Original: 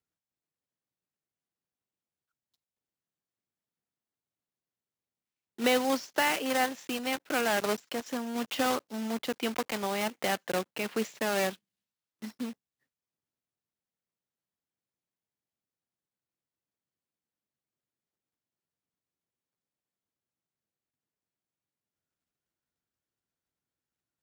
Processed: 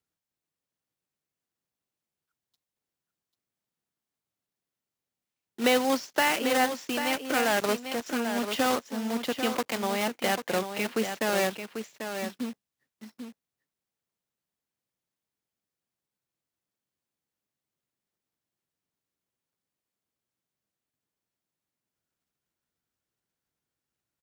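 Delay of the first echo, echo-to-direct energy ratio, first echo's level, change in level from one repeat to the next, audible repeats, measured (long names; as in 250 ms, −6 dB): 792 ms, −8.0 dB, −8.0 dB, repeats not evenly spaced, 1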